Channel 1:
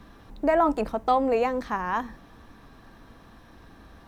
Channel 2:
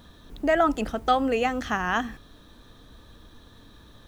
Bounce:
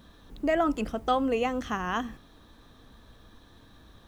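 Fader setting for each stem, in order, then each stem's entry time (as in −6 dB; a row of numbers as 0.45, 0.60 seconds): −9.5, −5.0 decibels; 0.00, 0.00 seconds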